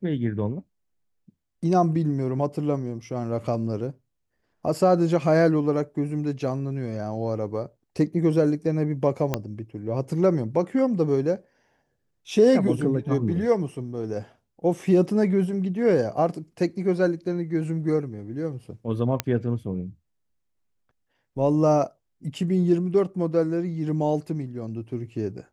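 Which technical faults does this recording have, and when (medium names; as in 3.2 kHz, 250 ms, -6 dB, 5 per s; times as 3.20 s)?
9.34 s: pop -9 dBFS
19.20 s: pop -7 dBFS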